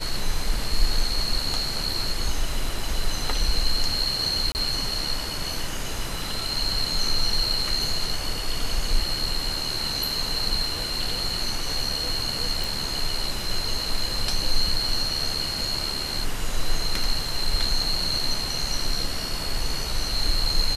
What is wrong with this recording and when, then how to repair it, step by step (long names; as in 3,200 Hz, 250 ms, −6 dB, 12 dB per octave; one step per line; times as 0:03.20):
0:04.52–0:04.55: drop-out 29 ms
0:12.64: click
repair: click removal
repair the gap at 0:04.52, 29 ms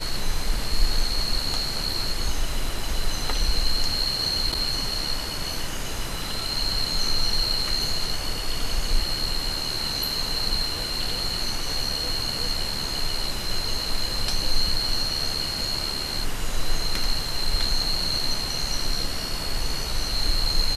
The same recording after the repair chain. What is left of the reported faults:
none of them is left